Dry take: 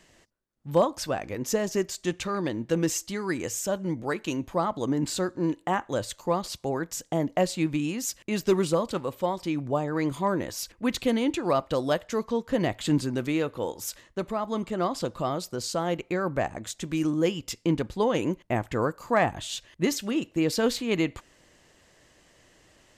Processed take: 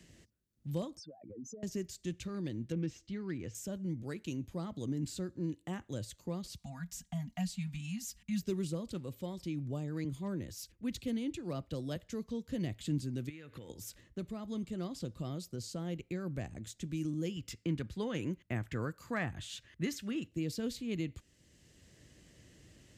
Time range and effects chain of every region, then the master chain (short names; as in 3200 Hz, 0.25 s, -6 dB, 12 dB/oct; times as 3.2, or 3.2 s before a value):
0.97–1.63 spectral contrast raised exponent 3.3 + HPF 220 Hz + compressor 4:1, threshold -37 dBFS
2.72–3.55 self-modulated delay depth 0.072 ms + LPF 2700 Hz
6.58–8.42 Chebyshev band-stop 210–720 Hz, order 3 + comb 4.2 ms, depth 80%
10.04–11.96 hard clip -14 dBFS + three-band expander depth 40%
13.29–13.7 compressor 16:1, threshold -37 dBFS + bell 1800 Hz +14 dB 1.4 oct
17.36–20.28 HPF 41 Hz + bell 1500 Hz +10.5 dB 1.6 oct
whole clip: HPF 69 Hz; passive tone stack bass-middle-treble 10-0-1; three-band squash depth 40%; gain +9 dB